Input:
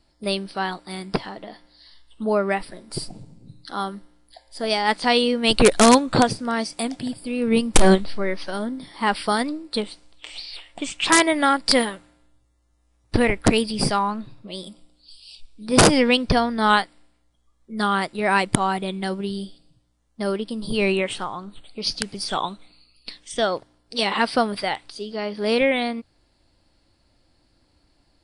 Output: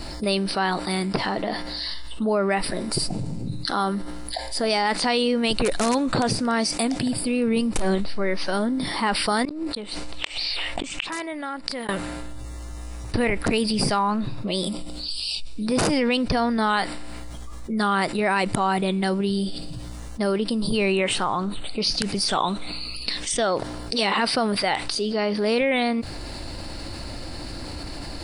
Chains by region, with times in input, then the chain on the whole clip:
9.45–11.89 tone controls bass -1 dB, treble -4 dB + flipped gate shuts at -20 dBFS, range -39 dB + negative-ratio compressor -42 dBFS
whole clip: notch 3300 Hz, Q 14; limiter -12 dBFS; fast leveller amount 70%; gain -5 dB

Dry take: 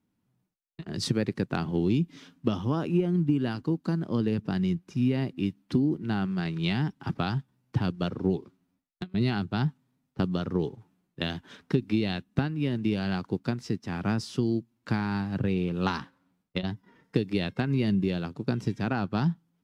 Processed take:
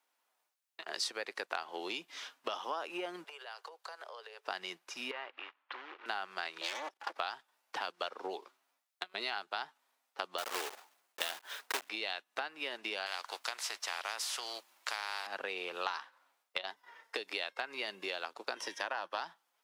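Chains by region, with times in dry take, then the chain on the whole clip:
3.24–4.48 steep high-pass 400 Hz 72 dB/oct + compressor 10:1, threshold -47 dBFS
5.11–6.06 compressor 2.5:1, threshold -33 dBFS + short-mantissa float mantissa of 2-bit + speaker cabinet 490–2700 Hz, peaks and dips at 680 Hz -5 dB, 1100 Hz +3 dB, 2200 Hz -3 dB
6.61–7.16 minimum comb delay 3.5 ms + level quantiser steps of 17 dB + Doppler distortion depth 0.33 ms
10.38–11.9 block floating point 3-bit + low shelf 220 Hz +6.5 dB
13.06–15.27 low shelf 230 Hz -9.5 dB + spectral compressor 2:1
18.56–19.18 ripple EQ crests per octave 1.2, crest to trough 7 dB + three-band squash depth 40%
whole clip: HPF 630 Hz 24 dB/oct; compressor 4:1, threshold -42 dBFS; gain +7 dB

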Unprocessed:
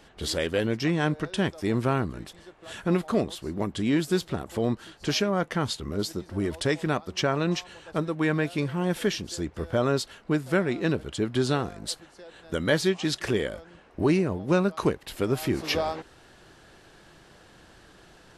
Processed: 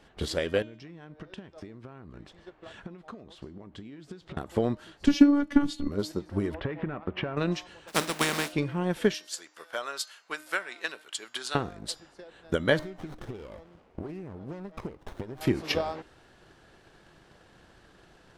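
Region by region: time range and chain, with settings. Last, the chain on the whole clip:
0.62–4.37 compressor 16:1, threshold -38 dBFS + air absorption 75 m
5.06–5.88 resonant low shelf 290 Hz +10 dB, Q 3 + robotiser 287 Hz
6.54–7.37 sample leveller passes 2 + LPF 2400 Hz 24 dB/oct + compressor 16:1, threshold -27 dBFS
7.87–8.51 spectral contrast lowered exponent 0.29 + resonant low shelf 130 Hz -12.5 dB, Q 1.5
9.14–11.55 HPF 1100 Hz + high shelf 7000 Hz +10.5 dB
12.79–15.41 compressor 8:1, threshold -33 dBFS + running maximum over 17 samples
whole clip: high shelf 4600 Hz -6 dB; transient shaper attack +8 dB, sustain +1 dB; de-hum 307 Hz, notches 24; gain -4 dB

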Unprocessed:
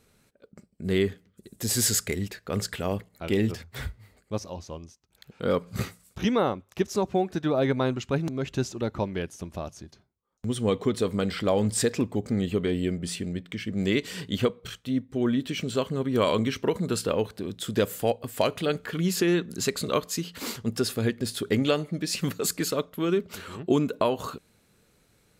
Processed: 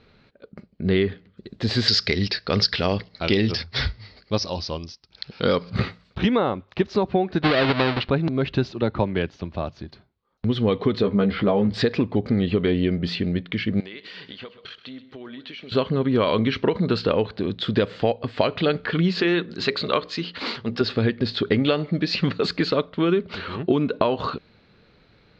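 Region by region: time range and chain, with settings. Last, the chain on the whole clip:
1.88–5.7 synth low-pass 5300 Hz, resonance Q 6.9 + high shelf 3500 Hz +7.5 dB
7.42–8.1 half-waves squared off + LPF 4700 Hz 24 dB/oct + tilt +1.5 dB/oct
8.71–9.81 LPF 7800 Hz + three-band expander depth 40%
11.02–11.74 tape spacing loss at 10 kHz 25 dB + doubler 15 ms -3.5 dB
13.8–15.72 HPF 760 Hz 6 dB/oct + compressor 8:1, threshold -43 dBFS + feedback echo 0.129 s, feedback 33%, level -14.5 dB
19.21–20.81 low shelf 340 Hz -8 dB + notches 60/120/180/240/300/360/420/480/540 Hz
whole clip: elliptic low-pass 4400 Hz, stop band 70 dB; compressor, threshold -25 dBFS; gain +9 dB

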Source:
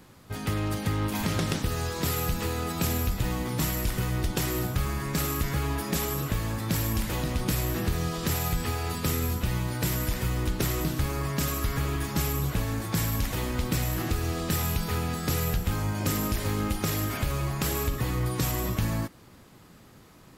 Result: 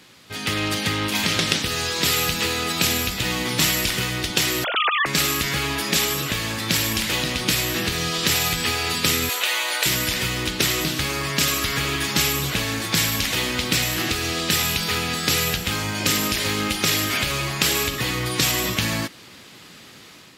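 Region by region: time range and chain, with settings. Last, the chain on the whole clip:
4.64–5.06 sine-wave speech + low shelf 330 Hz -11.5 dB
9.29–9.86 HPF 510 Hz 24 dB/oct + bell 5200 Hz -7.5 dB 0.23 oct + fast leveller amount 50%
whole clip: weighting filter D; AGC gain up to 5.5 dB; gain +1 dB

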